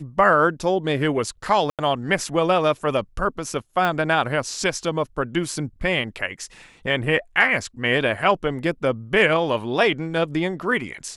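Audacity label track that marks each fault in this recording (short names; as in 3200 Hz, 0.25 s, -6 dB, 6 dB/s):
1.700000	1.790000	gap 87 ms
3.850000	3.850000	pop -11 dBFS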